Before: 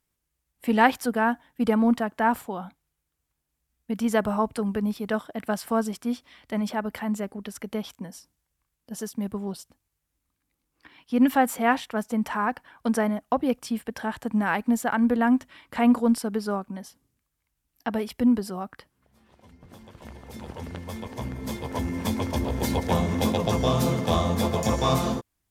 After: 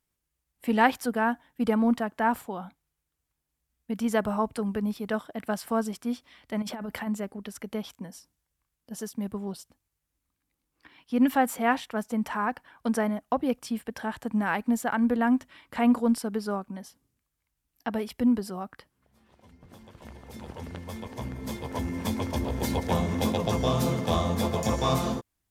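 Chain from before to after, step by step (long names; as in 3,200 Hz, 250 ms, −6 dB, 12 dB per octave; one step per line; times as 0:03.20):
0:06.62–0:07.07: compressor whose output falls as the input rises −32 dBFS, ratio −1
level −2.5 dB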